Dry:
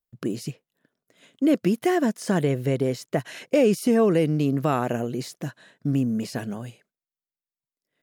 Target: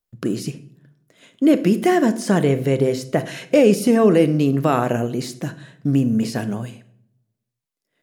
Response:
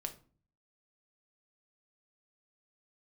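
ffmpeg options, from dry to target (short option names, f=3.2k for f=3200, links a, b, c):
-filter_complex "[0:a]asplit=2[a][b];[1:a]atrim=start_sample=2205,asetrate=24696,aresample=44100[c];[b][c]afir=irnorm=-1:irlink=0,volume=-2.5dB[d];[a][d]amix=inputs=2:normalize=0"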